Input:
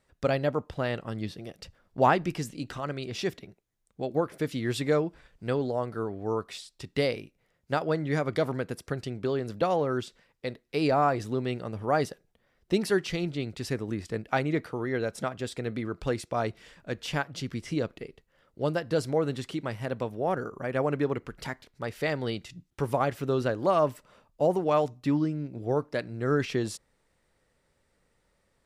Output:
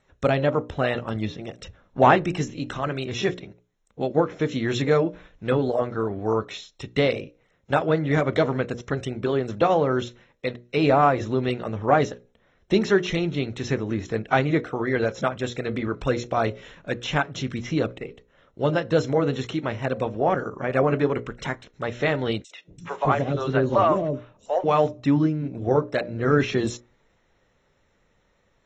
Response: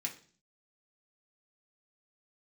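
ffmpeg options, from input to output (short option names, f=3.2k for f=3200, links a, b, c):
-filter_complex "[0:a]highshelf=f=6.8k:g=-5,bandreject=f=60:t=h:w=6,bandreject=f=120:t=h:w=6,bandreject=f=180:t=h:w=6,bandreject=f=240:t=h:w=6,bandreject=f=300:t=h:w=6,bandreject=f=360:t=h:w=6,bandreject=f=420:t=h:w=6,bandreject=f=480:t=h:w=6,bandreject=f=540:t=h:w=6,bandreject=f=600:t=h:w=6,acontrast=63,asuperstop=centerf=4700:order=8:qfactor=5.9,asettb=1/sr,asplit=3[a][b][c];[a]atrim=end=22.424[d];[b]atrim=start=22.42:end=24.64,asetpts=PTS-STARTPTS,afade=t=in:d=0.004:c=qsin,afade=t=out:st=2.216:d=0.004:c=qsin,acrossover=split=520|4500[e][f][g];[f]adelay=90[h];[e]adelay=260[i];[i][h][g]amix=inputs=3:normalize=0,atrim=end_sample=97902[j];[c]atrim=start=24.636[k];[d][j]acrossfade=d=0.004:c1=hsin:c2=qsin[l];[l][k]acrossfade=d=0.004:c1=qsin:c2=hsin" -ar 32000 -c:a aac -b:a 24k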